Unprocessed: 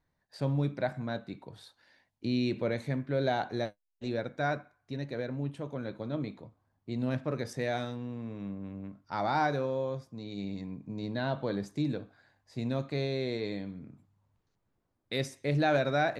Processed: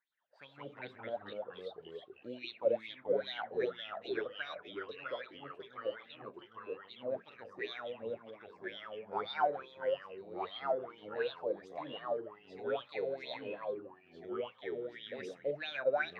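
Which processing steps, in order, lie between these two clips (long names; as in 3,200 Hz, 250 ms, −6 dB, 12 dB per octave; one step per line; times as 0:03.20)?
LFO wah 2.5 Hz 490–3,700 Hz, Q 9.5
delay with pitch and tempo change per echo 115 ms, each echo −2 semitones, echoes 3
level +7 dB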